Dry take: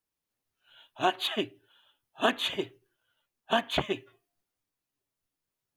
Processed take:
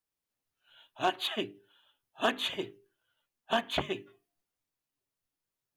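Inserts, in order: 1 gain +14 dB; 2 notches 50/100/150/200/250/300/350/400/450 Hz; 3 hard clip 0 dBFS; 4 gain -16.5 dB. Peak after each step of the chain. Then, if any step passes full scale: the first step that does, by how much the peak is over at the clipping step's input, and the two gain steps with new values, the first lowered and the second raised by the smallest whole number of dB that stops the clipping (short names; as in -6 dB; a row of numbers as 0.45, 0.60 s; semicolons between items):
+2.5, +3.0, 0.0, -16.5 dBFS; step 1, 3.0 dB; step 1 +11 dB, step 4 -13.5 dB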